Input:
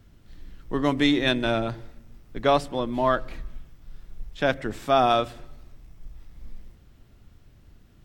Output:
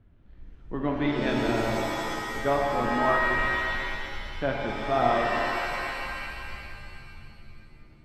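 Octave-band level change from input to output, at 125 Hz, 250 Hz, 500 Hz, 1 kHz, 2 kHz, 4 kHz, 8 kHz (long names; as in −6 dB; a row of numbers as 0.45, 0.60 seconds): −1.5 dB, −3.0 dB, −2.0 dB, −0.5 dB, +4.0 dB, −5.0 dB, can't be measured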